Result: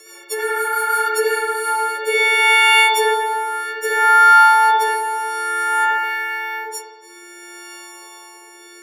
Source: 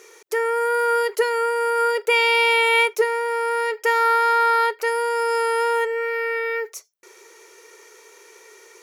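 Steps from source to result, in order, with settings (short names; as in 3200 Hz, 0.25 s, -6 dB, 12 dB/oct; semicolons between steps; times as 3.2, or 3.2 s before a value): frequency quantiser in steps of 4 st; rotary speaker horn 6 Hz, later 0.6 Hz, at 1; spring tank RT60 1.2 s, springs 60 ms, chirp 40 ms, DRR -5 dB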